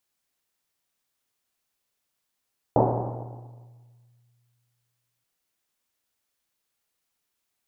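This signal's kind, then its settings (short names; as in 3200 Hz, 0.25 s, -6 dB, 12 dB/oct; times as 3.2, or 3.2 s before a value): Risset drum length 2.48 s, pitch 120 Hz, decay 2.48 s, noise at 560 Hz, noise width 690 Hz, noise 60%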